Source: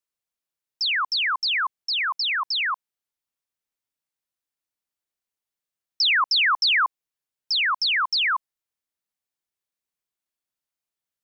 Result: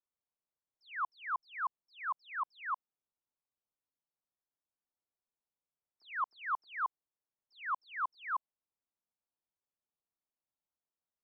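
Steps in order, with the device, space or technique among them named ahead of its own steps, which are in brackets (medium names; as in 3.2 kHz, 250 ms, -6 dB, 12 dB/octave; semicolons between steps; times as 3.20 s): overdriven synthesiser ladder filter (saturation -23.5 dBFS, distortion -13 dB; four-pole ladder low-pass 1.4 kHz, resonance 20%); trim +1 dB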